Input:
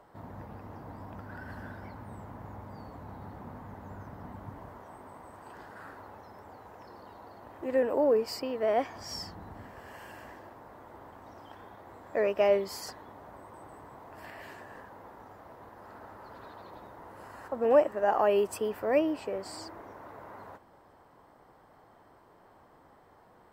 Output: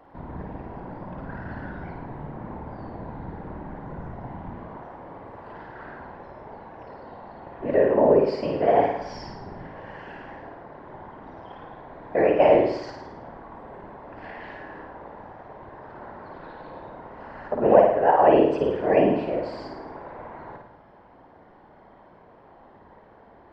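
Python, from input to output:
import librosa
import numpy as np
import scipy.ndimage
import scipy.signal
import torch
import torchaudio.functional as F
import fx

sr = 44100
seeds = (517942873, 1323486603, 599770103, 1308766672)

p1 = scipy.ndimage.gaussian_filter1d(x, 2.4, mode='constant')
p2 = fx.notch(p1, sr, hz=1200.0, q=5.1)
p3 = fx.whisperise(p2, sr, seeds[0])
p4 = p3 + fx.room_flutter(p3, sr, wall_m=9.3, rt60_s=0.73, dry=0)
y = p4 * librosa.db_to_amplitude(6.5)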